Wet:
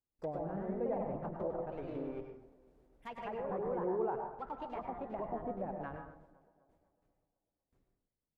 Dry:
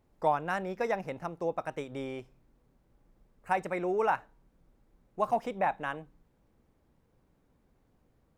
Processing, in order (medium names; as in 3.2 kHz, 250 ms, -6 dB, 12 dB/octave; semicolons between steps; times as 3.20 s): gate with hold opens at -57 dBFS; rotary cabinet horn 0.65 Hz, later 6 Hz, at 4.86 s; in parallel at -8 dB: Schmitt trigger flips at -38.5 dBFS; on the sum: ever faster or slower copies 139 ms, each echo +2 st, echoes 2; low-pass that closes with the level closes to 630 Hz, closed at -30.5 dBFS; tape echo 249 ms, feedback 57%, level -19 dB, low-pass 1.8 kHz; reverberation RT60 0.55 s, pre-delay 93 ms, DRR 4 dB; trim -5 dB